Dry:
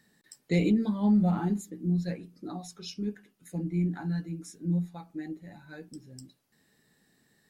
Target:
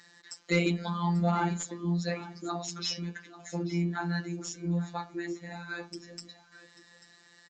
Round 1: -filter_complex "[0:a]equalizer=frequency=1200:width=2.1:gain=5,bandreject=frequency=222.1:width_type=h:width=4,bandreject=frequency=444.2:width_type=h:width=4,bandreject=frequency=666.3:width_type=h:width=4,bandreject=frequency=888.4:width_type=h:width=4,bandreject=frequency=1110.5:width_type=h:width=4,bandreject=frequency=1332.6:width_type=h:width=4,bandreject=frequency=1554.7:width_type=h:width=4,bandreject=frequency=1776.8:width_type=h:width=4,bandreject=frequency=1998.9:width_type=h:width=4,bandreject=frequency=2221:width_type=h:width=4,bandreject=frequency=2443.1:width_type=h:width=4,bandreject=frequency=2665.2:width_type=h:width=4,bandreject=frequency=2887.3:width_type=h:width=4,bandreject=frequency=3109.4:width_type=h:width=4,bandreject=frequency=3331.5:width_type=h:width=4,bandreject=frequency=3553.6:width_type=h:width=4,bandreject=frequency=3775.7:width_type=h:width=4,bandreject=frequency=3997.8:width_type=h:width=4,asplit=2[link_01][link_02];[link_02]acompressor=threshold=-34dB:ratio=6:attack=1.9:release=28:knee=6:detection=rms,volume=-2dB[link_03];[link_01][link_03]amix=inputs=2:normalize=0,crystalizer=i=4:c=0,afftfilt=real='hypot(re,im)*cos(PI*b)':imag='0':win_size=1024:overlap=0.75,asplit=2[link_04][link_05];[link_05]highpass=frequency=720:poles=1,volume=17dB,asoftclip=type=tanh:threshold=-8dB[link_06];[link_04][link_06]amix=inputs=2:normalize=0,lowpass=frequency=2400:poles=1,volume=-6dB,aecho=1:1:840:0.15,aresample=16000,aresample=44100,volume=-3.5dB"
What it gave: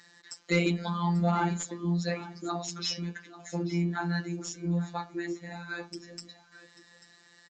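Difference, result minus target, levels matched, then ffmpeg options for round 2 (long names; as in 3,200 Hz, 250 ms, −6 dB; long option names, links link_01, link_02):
downward compressor: peak gain reduction −5.5 dB
-filter_complex "[0:a]equalizer=frequency=1200:width=2.1:gain=5,bandreject=frequency=222.1:width_type=h:width=4,bandreject=frequency=444.2:width_type=h:width=4,bandreject=frequency=666.3:width_type=h:width=4,bandreject=frequency=888.4:width_type=h:width=4,bandreject=frequency=1110.5:width_type=h:width=4,bandreject=frequency=1332.6:width_type=h:width=4,bandreject=frequency=1554.7:width_type=h:width=4,bandreject=frequency=1776.8:width_type=h:width=4,bandreject=frequency=1998.9:width_type=h:width=4,bandreject=frequency=2221:width_type=h:width=4,bandreject=frequency=2443.1:width_type=h:width=4,bandreject=frequency=2665.2:width_type=h:width=4,bandreject=frequency=2887.3:width_type=h:width=4,bandreject=frequency=3109.4:width_type=h:width=4,bandreject=frequency=3331.5:width_type=h:width=4,bandreject=frequency=3553.6:width_type=h:width=4,bandreject=frequency=3775.7:width_type=h:width=4,bandreject=frequency=3997.8:width_type=h:width=4,asplit=2[link_01][link_02];[link_02]acompressor=threshold=-40.5dB:ratio=6:attack=1.9:release=28:knee=6:detection=rms,volume=-2dB[link_03];[link_01][link_03]amix=inputs=2:normalize=0,crystalizer=i=4:c=0,afftfilt=real='hypot(re,im)*cos(PI*b)':imag='0':win_size=1024:overlap=0.75,asplit=2[link_04][link_05];[link_05]highpass=frequency=720:poles=1,volume=17dB,asoftclip=type=tanh:threshold=-8dB[link_06];[link_04][link_06]amix=inputs=2:normalize=0,lowpass=frequency=2400:poles=1,volume=-6dB,aecho=1:1:840:0.15,aresample=16000,aresample=44100,volume=-3.5dB"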